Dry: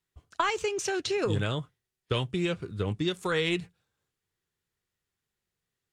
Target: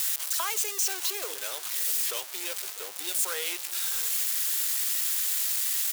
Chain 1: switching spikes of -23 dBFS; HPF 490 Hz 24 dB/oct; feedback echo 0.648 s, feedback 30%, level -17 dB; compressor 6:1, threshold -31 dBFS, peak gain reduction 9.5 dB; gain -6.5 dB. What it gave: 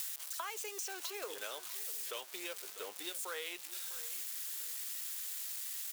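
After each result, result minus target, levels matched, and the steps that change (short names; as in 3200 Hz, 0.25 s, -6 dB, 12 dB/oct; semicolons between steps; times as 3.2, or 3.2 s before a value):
compressor: peak gain reduction +9.5 dB; switching spikes: distortion -9 dB
remove: compressor 6:1, threshold -31 dBFS, peak gain reduction 9.5 dB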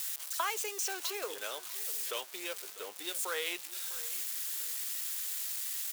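switching spikes: distortion -9 dB
change: switching spikes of -13.5 dBFS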